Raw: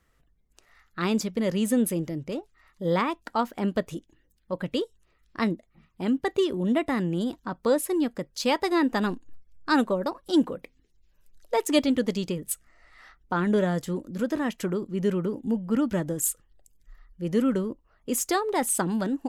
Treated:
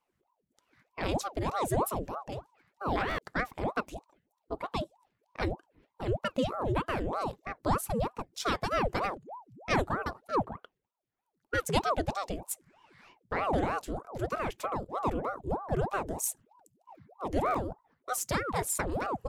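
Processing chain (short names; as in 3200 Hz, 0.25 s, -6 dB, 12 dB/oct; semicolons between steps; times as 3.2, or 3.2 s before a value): 8.45–8.95 Chebyshev high-pass 170 Hz; 10.27–11.54 three-band isolator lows -20 dB, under 220 Hz, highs -13 dB, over 2300 Hz; gate -57 dBFS, range -7 dB; stuck buffer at 3.08/17.44, samples 512, times 8; ring modulator with a swept carrier 560 Hz, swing 80%, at 3.2 Hz; gain -3 dB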